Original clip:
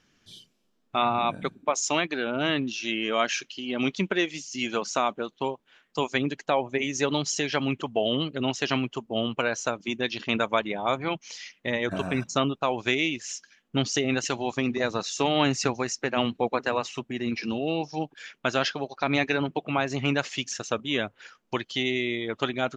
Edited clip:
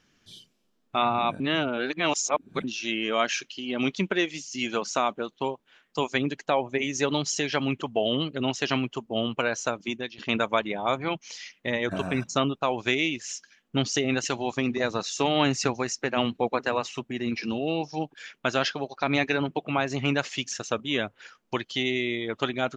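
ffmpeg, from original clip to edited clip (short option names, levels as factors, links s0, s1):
-filter_complex "[0:a]asplit=4[s0][s1][s2][s3];[s0]atrim=end=1.402[s4];[s1]atrim=start=1.398:end=2.642,asetpts=PTS-STARTPTS,areverse[s5];[s2]atrim=start=2.638:end=10.18,asetpts=PTS-STARTPTS,afade=t=out:st=7.232:d=0.31:silence=0.105925[s6];[s3]atrim=start=10.18,asetpts=PTS-STARTPTS,afade=t=in:d=0.004:c=hsin:silence=0.105925[s7];[s4][s5]acrossfade=d=0.004:c1=hsin:c2=hsin[s8];[s6][s7]concat=n=2:v=0:a=1[s9];[s8][s9]acrossfade=d=0.004:c1=hsin:c2=hsin"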